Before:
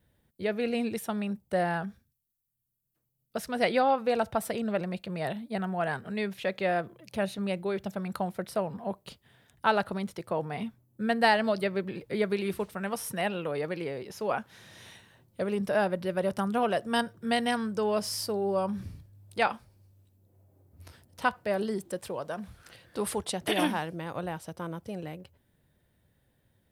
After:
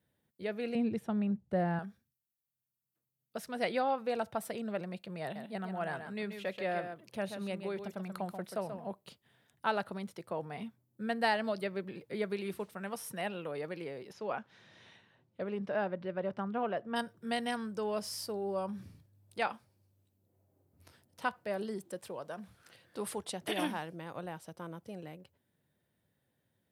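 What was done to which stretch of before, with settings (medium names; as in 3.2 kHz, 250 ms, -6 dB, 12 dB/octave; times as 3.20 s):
0.75–1.79 s: RIAA curve playback
5.22–8.88 s: delay 134 ms -8 dB
14.12–16.95 s: low-pass 5.2 kHz -> 2.1 kHz
whole clip: high-pass 120 Hz; trim -7 dB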